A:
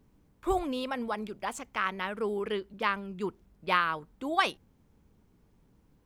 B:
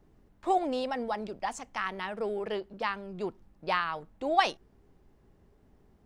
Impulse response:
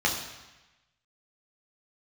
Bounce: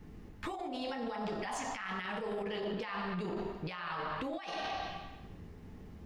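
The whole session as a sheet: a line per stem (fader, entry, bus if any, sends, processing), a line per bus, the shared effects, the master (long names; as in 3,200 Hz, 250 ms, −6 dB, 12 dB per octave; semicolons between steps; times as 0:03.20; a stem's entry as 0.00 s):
−14.0 dB, 0.00 s, no send, leveller curve on the samples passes 1
+2.5 dB, 0.00 s, polarity flipped, send −10.5 dB, no processing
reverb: on, RT60 1.1 s, pre-delay 3 ms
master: compressor whose output falls as the input rises −35 dBFS, ratio −1; brickwall limiter −29.5 dBFS, peak gain reduction 10 dB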